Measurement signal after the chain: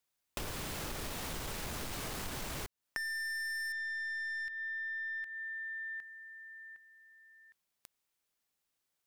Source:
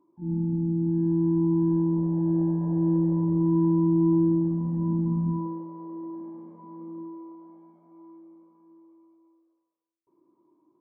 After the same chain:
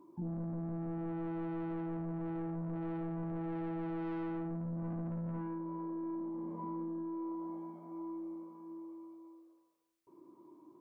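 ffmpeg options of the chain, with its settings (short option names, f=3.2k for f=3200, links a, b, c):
-af "aeval=exprs='(tanh(28.2*val(0)+0.15)-tanh(0.15))/28.2':c=same,acompressor=threshold=-45dB:ratio=12,volume=7.5dB"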